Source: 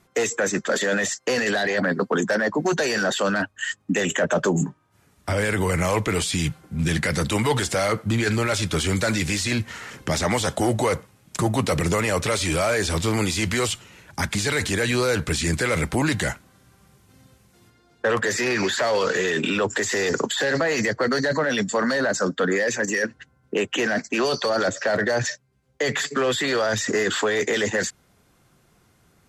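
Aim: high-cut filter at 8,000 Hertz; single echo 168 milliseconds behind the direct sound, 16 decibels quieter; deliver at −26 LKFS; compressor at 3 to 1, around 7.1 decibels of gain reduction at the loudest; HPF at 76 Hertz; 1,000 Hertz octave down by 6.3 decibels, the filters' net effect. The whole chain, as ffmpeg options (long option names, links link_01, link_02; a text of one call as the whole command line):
ffmpeg -i in.wav -af "highpass=76,lowpass=8000,equalizer=frequency=1000:width_type=o:gain=-9,acompressor=threshold=-29dB:ratio=3,aecho=1:1:168:0.158,volume=4.5dB" out.wav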